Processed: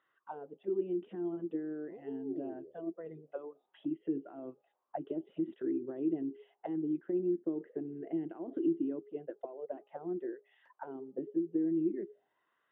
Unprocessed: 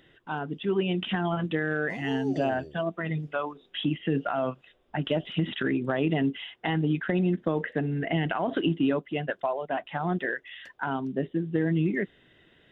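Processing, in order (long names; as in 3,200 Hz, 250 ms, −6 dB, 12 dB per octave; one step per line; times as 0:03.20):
hum removal 410.1 Hz, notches 3
envelope filter 340–1,200 Hz, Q 7.4, down, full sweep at −25 dBFS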